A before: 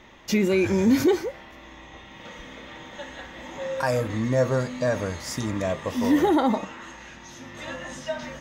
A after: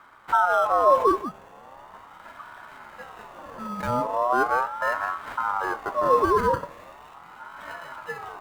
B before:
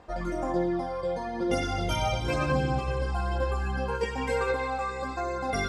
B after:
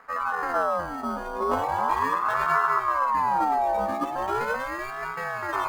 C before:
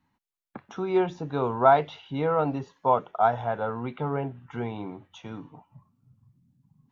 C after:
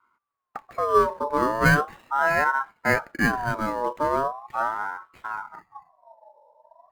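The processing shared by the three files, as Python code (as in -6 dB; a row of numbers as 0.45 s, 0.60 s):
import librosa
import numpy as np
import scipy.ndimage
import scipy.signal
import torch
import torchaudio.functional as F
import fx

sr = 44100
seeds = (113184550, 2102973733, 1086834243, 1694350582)

y = fx.sample_hold(x, sr, seeds[0], rate_hz=4600.0, jitter_pct=0)
y = fx.tilt_shelf(y, sr, db=9.0, hz=740.0)
y = fx.ring_lfo(y, sr, carrier_hz=970.0, swing_pct=25, hz=0.39)
y = y * 10.0 ** (-26 / 20.0) / np.sqrt(np.mean(np.square(y)))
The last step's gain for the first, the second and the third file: -2.5 dB, 0.0 dB, +2.5 dB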